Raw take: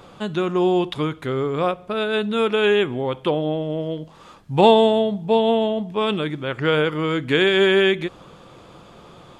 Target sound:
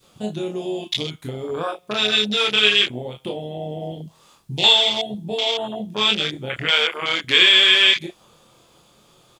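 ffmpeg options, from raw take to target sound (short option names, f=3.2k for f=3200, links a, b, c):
-filter_complex "[0:a]asettb=1/sr,asplit=3[a][b][c];[a]atrim=end=6.654[d];[b]atrim=start=6.65:end=7.38,asetpts=PTS-STARTPTS,afade=t=in:d=0.004:c=qsin,afade=t=out:st=0.726:d=0.004:c=qsin,equalizer=f=160:w=0.83:g=-12.5[e];[c]atrim=start=7.376[f];[d][e]acrossfade=d=0.004:c1=hsin:c2=qsin[g];[g][f]acrossfade=d=0.004:c1=qsin:c2=hsin,acrossover=split=2000[h][i];[h]acompressor=threshold=-31dB:ratio=20[j];[i]crystalizer=i=5:c=0[k];[j][k]amix=inputs=2:normalize=0,asplit=2[l][m];[m]adelay=33,volume=-11dB[n];[l][n]amix=inputs=2:normalize=0,asplit=2[o][p];[p]aecho=0:1:24|38:0.631|0.355[q];[o][q]amix=inputs=2:normalize=0,adynamicequalizer=threshold=0.01:dfrequency=860:dqfactor=0.98:tfrequency=860:tqfactor=0.98:attack=5:release=100:ratio=0.375:range=3:mode=boostabove:tftype=bell,afwtdn=0.0562,acrusher=bits=11:mix=0:aa=0.000001,volume=2.5dB"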